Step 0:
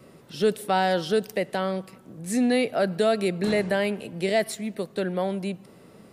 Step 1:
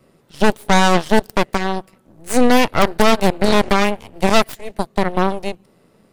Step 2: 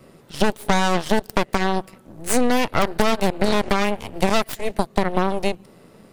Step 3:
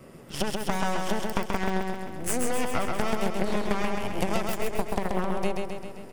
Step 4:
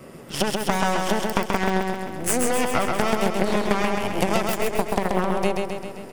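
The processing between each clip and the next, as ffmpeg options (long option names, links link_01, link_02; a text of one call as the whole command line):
ffmpeg -i in.wav -af "aeval=exprs='0.266*(cos(1*acos(clip(val(0)/0.266,-1,1)))-cos(1*PI/2))+0.0944*(cos(3*acos(clip(val(0)/0.266,-1,1)))-cos(3*PI/2))+0.106*(cos(4*acos(clip(val(0)/0.266,-1,1)))-cos(4*PI/2))+0.0841*(cos(5*acos(clip(val(0)/0.266,-1,1)))-cos(5*PI/2))+0.0668*(cos(7*acos(clip(val(0)/0.266,-1,1)))-cos(7*PI/2))':channel_layout=same,volume=8dB" out.wav
ffmpeg -i in.wav -filter_complex "[0:a]asplit=2[link_01][link_02];[link_02]alimiter=limit=-11dB:level=0:latency=1:release=109,volume=0dB[link_03];[link_01][link_03]amix=inputs=2:normalize=0,acompressor=threshold=-14dB:ratio=4" out.wav
ffmpeg -i in.wav -af "acompressor=threshold=-24dB:ratio=6,equalizer=frequency=4000:width_type=o:width=0.31:gain=-8,aecho=1:1:132|264|396|528|660|792|924|1056|1188:0.668|0.401|0.241|0.144|0.0866|0.052|0.0312|0.0187|0.0112" out.wav
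ffmpeg -i in.wav -af "lowshelf=frequency=100:gain=-7,volume=6.5dB" out.wav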